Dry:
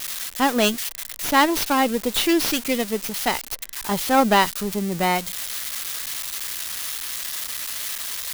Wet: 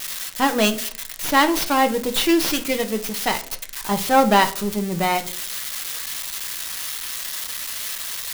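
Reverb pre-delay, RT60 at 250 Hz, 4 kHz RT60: 5 ms, 0.65 s, 0.30 s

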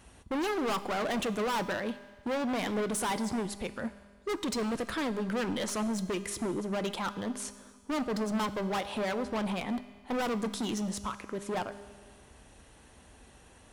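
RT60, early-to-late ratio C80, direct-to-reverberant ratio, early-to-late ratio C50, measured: 1.6 s, 15.0 dB, 12.0 dB, 13.5 dB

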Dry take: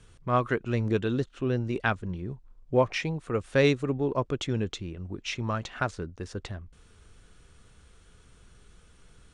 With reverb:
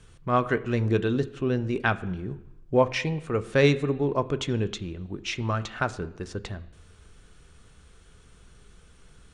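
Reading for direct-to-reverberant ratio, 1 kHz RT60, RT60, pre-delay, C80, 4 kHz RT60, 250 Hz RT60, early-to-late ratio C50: 11.5 dB, 0.90 s, 0.90 s, 3 ms, 19.0 dB, 0.90 s, 0.90 s, 17.0 dB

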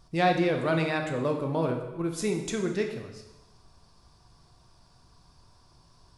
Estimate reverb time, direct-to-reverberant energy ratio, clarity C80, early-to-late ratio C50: 1.0 s, 3.0 dB, 9.0 dB, 6.5 dB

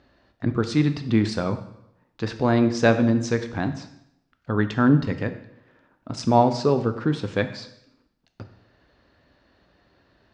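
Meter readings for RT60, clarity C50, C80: 0.80 s, 11.5 dB, 13.5 dB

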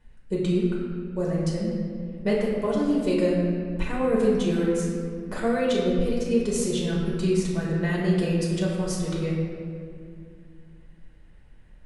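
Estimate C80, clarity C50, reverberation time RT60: 2.0 dB, 0.0 dB, 2.3 s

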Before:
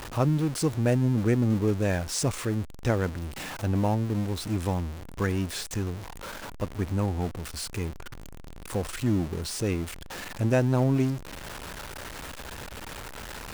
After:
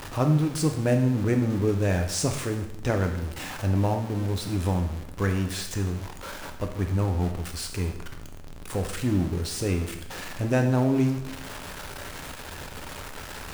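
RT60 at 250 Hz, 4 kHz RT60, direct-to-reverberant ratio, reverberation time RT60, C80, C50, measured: 0.85 s, 0.80 s, 4.5 dB, 0.85 s, 11.0 dB, 8.0 dB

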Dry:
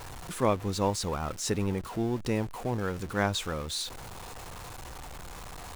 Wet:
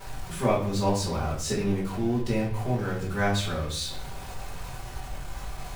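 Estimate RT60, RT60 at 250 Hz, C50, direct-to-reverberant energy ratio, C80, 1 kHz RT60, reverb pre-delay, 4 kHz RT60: 0.55 s, 0.90 s, 5.5 dB, −10.0 dB, 9.5 dB, 0.50 s, 5 ms, 0.50 s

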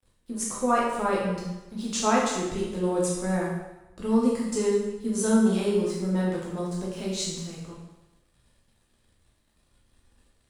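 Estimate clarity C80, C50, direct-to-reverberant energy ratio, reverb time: 4.0 dB, 1.0 dB, −5.0 dB, 1.0 s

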